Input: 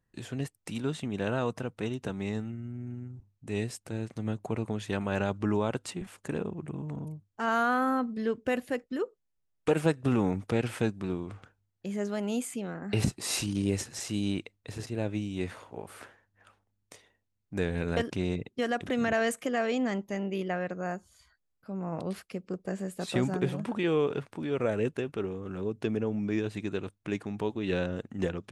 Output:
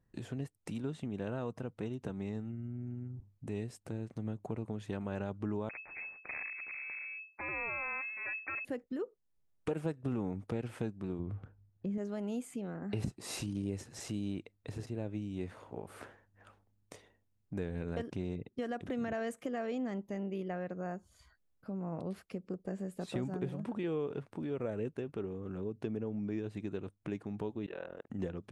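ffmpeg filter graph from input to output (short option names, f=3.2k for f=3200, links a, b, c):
-filter_complex "[0:a]asettb=1/sr,asplit=3[a][b][c];[a]atrim=end=5.694[d];[b]atrim=start=5.69:end=8.65,asetpts=PTS-STARTPTS,afade=t=in:d=0.004:c=qsin,afade=t=out:st=2.956:d=0.004:c=qsin,aeval=exprs='abs(val(0))':c=same,lowpass=f=2.2k:t=q:w=0.5098,lowpass=f=2.2k:t=q:w=0.6013,lowpass=f=2.2k:t=q:w=0.9,lowpass=f=2.2k:t=q:w=2.563,afreqshift=-2600[e];[c]atrim=start=8.646[f];[d][e]acrossfade=d=0.004:c1=hsin:c2=qsin[g];[g][f]acrossfade=d=0.004:c1=qsin:c2=hsin,asettb=1/sr,asplit=3[h][i][j];[h]atrim=end=11.194[k];[i]atrim=start=11.19:end=11.98,asetpts=PTS-STARTPTS,afade=t=in:d=0.004:c=qsin,afade=t=out:st=0.786:d=0.004:c=qsin,lowpass=f=2.2k:p=1,equalizer=f=79:t=o:w=3:g=9.5[l];[j]atrim=start=11.976[m];[k][l]acrossfade=d=0.004:c1=hsin:c2=qsin[n];[n][m]acrossfade=d=0.004:c1=qsin:c2=hsin,asettb=1/sr,asplit=3[o][p][q];[o]atrim=end=27.664[r];[p]atrim=start=27.66:end=28.1,asetpts=PTS-STARTPTS,afade=t=in:d=0.004:c=qsin,afade=t=out:st=0.436:d=0.004:c=qsin,acrossover=split=460 2900:gain=0.0891 1 0.224[s][t][u];[s][t][u]amix=inputs=3:normalize=0,tremolo=f=41:d=0.974[v];[q]atrim=start=28.096[w];[r][v]acrossfade=d=0.004:c1=hsin:c2=qsin[x];[x][w]acrossfade=d=0.004:c1=qsin:c2=hsin,tiltshelf=f=1.1k:g=4.5,acompressor=threshold=-43dB:ratio=2"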